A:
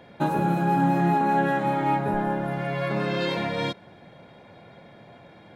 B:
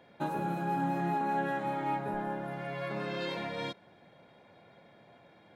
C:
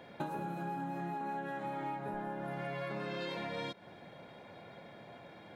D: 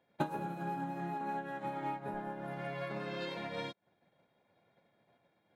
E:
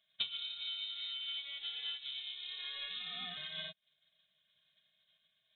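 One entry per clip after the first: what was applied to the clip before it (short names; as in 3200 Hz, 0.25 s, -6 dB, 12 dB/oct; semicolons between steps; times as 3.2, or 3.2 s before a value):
low shelf 160 Hz -7 dB; gain -8.5 dB
compressor 12:1, threshold -42 dBFS, peak gain reduction 15.5 dB; gain +6 dB
upward expander 2.5:1, over -56 dBFS; gain +6.5 dB
inverted band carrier 3900 Hz; gain -3.5 dB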